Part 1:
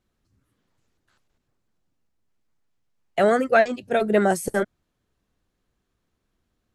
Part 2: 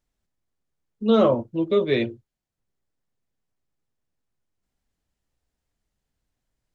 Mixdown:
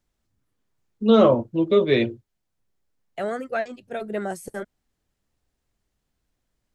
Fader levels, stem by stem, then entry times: -9.5 dB, +2.5 dB; 0.00 s, 0.00 s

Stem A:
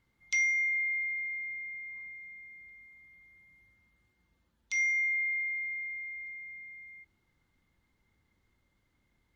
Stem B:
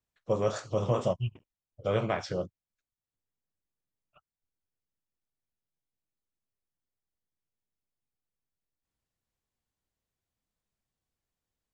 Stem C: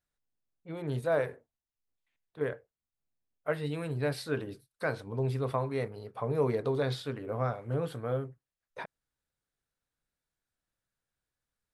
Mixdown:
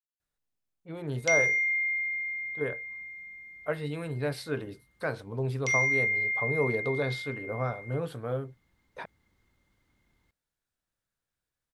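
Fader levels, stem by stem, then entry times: +3.0 dB, mute, 0.0 dB; 0.95 s, mute, 0.20 s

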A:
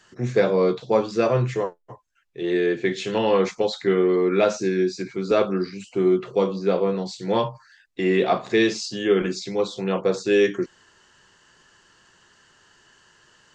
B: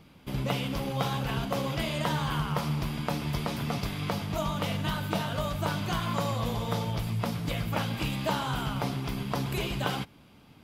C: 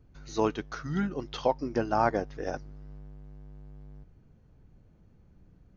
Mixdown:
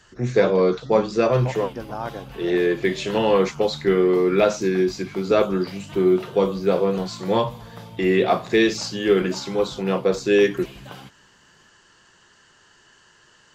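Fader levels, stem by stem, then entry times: +1.5 dB, -9.5 dB, -5.5 dB; 0.00 s, 1.05 s, 0.00 s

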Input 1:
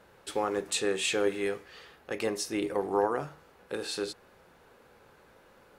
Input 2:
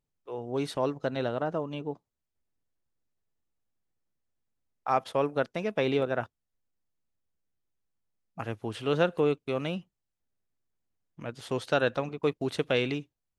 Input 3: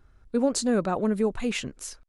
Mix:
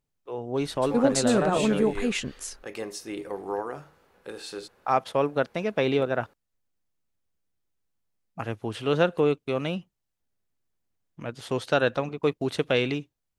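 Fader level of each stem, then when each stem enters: -4.0 dB, +3.0 dB, +1.0 dB; 0.55 s, 0.00 s, 0.60 s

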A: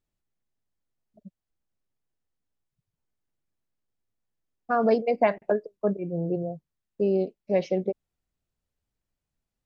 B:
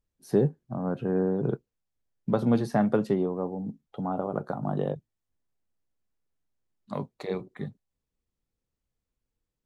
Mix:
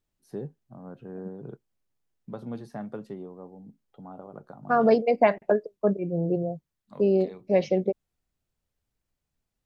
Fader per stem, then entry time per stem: +2.0 dB, -13.0 dB; 0.00 s, 0.00 s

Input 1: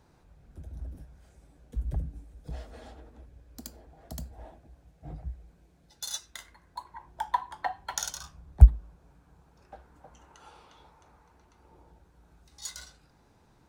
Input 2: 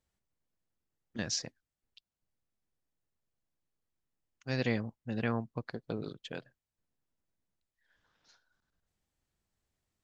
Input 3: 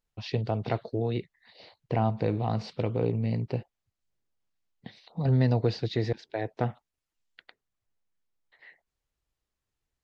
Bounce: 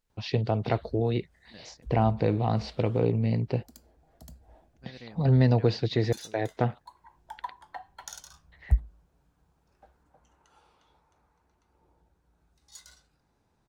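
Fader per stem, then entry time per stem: -9.5 dB, -15.0 dB, +2.5 dB; 0.10 s, 0.35 s, 0.00 s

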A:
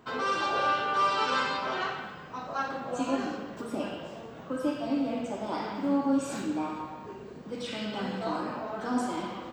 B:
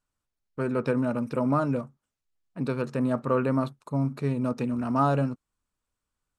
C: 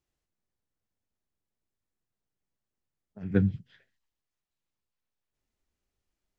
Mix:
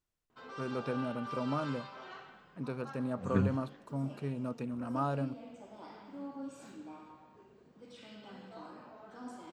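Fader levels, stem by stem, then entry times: -17.0 dB, -10.0 dB, -5.5 dB; 0.30 s, 0.00 s, 0.00 s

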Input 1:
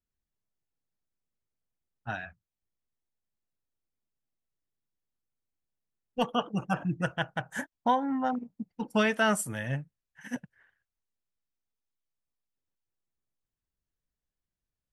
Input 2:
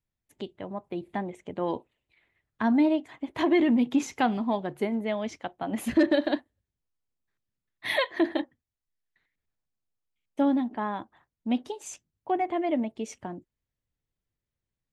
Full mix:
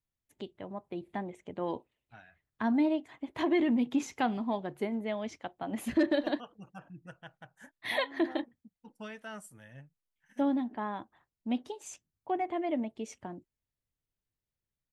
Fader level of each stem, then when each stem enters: -18.5 dB, -5.0 dB; 0.05 s, 0.00 s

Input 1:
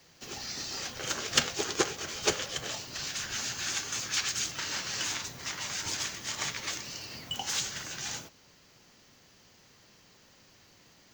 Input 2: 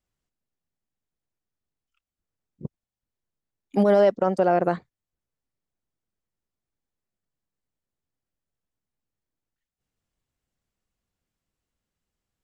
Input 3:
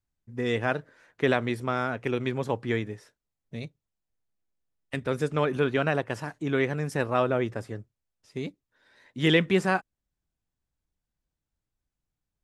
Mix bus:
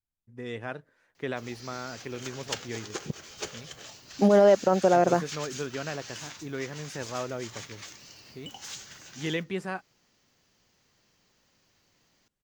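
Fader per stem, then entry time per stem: -9.0 dB, -0.5 dB, -9.5 dB; 1.15 s, 0.45 s, 0.00 s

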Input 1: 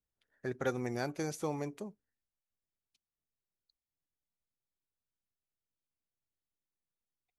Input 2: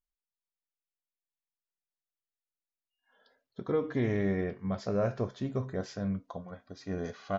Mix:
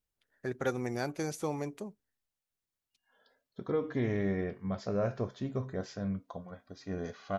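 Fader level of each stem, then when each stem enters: +1.5 dB, -2.0 dB; 0.00 s, 0.00 s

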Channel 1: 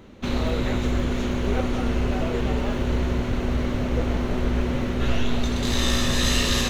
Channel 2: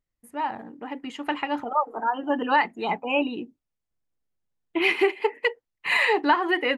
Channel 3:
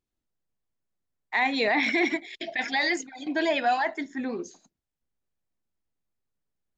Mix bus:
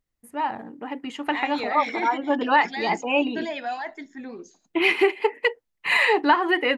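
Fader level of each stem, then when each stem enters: mute, +2.0 dB, -6.0 dB; mute, 0.00 s, 0.00 s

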